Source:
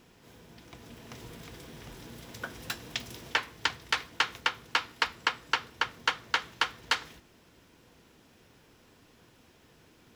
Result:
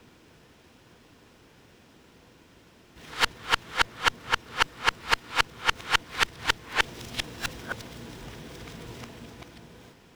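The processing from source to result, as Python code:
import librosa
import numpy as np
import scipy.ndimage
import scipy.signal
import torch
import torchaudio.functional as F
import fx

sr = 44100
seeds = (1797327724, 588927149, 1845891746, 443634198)

y = x[::-1].copy()
y = fx.running_max(y, sr, window=3)
y = F.gain(torch.from_numpy(y), 4.5).numpy()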